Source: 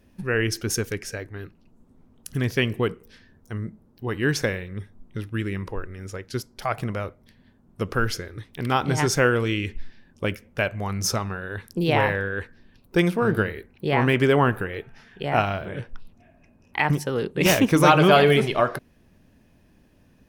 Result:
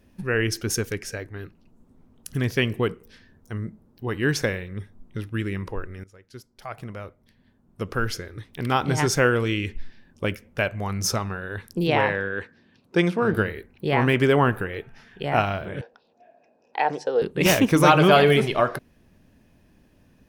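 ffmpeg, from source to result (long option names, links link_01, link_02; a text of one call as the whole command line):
ffmpeg -i in.wav -filter_complex "[0:a]asettb=1/sr,asplit=3[link_01][link_02][link_03];[link_01]atrim=end=11.874[link_04];[link_02]atrim=start=11.87:end=13.34,asetpts=PTS-STARTPTS,afade=type=in:duration=0.004:curve=qsin,afade=type=out:start_time=1.466:duration=0.004:curve=qsin,highpass=130,lowpass=7200[link_05];[link_03]atrim=start=13.336[link_06];[link_04][link_05]acrossfade=duration=0.004:curve1=hsin:curve2=qsin[link_07];[link_07][link_06]acrossfade=duration=0.004:curve1=qsin:curve2=hsin,asettb=1/sr,asplit=3[link_08][link_09][link_10];[link_08]atrim=end=15.814[link_11];[link_09]atrim=start=15.81:end=17.22,asetpts=PTS-STARTPTS,afade=type=in:duration=0.004:curve=qsin,afade=type=out:start_time=1.406:duration=0.004:curve=qsin,highpass=430,equalizer=frequency=480:width_type=q:width=4:gain=9,equalizer=frequency=730:width_type=q:width=4:gain=8,equalizer=frequency=1200:width_type=q:width=4:gain=-8,equalizer=frequency=2100:width_type=q:width=4:gain=-9,equalizer=frequency=3000:width_type=q:width=4:gain=-6,equalizer=frequency=6000:width_type=q:width=4:gain=-4,lowpass=frequency=6100:width=0.5412,lowpass=frequency=6100:width=1.3066[link_12];[link_10]atrim=start=17.216[link_13];[link_11][link_12]acrossfade=duration=0.004:curve1=hsin:curve2=qsin[link_14];[link_14][link_13]acrossfade=duration=0.004:curve1=qsin:curve2=hsin,asplit=2[link_15][link_16];[link_15]atrim=end=6.04,asetpts=PTS-STARTPTS,afade=type=out:start_time=6.036:duration=0.004:curve=hsin:silence=0.105925[link_17];[link_16]atrim=start=6.04,asetpts=PTS-STARTPTS,afade=type=in:duration=2.56:silence=0.105925[link_18];[link_17][link_18]concat=n=2:v=0:a=1" out.wav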